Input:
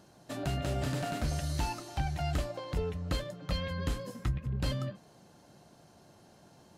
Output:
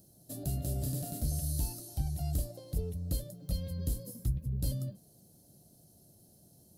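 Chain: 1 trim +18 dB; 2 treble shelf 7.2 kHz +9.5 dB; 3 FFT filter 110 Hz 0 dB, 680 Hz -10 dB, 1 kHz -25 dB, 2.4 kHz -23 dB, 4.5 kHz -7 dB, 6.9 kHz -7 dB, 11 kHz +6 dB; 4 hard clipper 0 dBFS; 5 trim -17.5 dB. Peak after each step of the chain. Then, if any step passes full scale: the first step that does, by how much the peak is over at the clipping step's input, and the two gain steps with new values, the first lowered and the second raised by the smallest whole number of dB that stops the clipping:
-3.0 dBFS, -1.5 dBFS, -4.0 dBFS, -4.0 dBFS, -21.5 dBFS; nothing clips

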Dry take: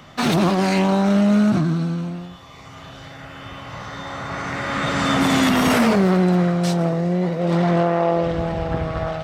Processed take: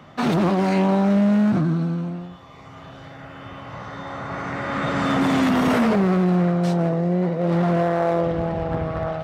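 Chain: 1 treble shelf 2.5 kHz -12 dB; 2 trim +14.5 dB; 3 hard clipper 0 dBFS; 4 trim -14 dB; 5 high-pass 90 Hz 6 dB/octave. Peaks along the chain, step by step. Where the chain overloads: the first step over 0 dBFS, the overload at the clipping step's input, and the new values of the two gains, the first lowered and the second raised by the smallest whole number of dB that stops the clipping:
-7.0 dBFS, +7.5 dBFS, 0.0 dBFS, -14.0 dBFS, -11.0 dBFS; step 2, 7.5 dB; step 2 +6.5 dB, step 4 -6 dB

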